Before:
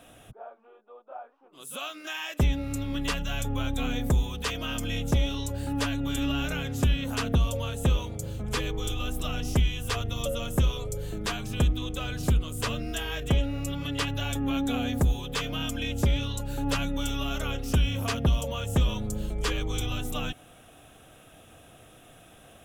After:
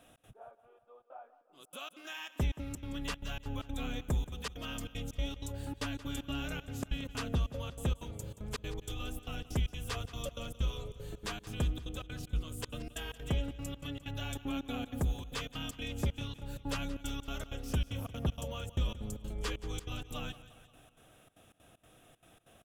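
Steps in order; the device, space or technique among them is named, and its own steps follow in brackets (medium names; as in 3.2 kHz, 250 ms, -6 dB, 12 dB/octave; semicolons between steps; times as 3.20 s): trance gate with a delay (trance gate "xx.xxxx.xx." 191 bpm -60 dB; feedback delay 176 ms, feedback 56%, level -16 dB); trim -8.5 dB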